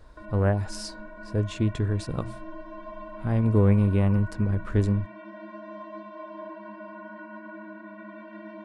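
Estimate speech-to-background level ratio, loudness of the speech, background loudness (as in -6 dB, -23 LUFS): 17.0 dB, -25.5 LUFS, -42.5 LUFS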